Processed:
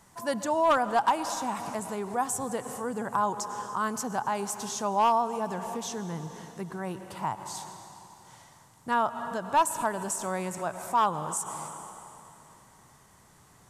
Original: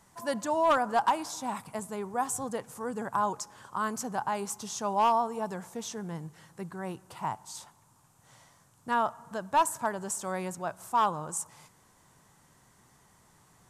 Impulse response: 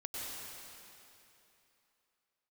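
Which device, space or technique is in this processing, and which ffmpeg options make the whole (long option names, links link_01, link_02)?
ducked reverb: -filter_complex "[0:a]asplit=3[link_01][link_02][link_03];[1:a]atrim=start_sample=2205[link_04];[link_02][link_04]afir=irnorm=-1:irlink=0[link_05];[link_03]apad=whole_len=603953[link_06];[link_05][link_06]sidechaincompress=threshold=-41dB:ratio=8:attack=42:release=105,volume=-6dB[link_07];[link_01][link_07]amix=inputs=2:normalize=0,volume=1dB"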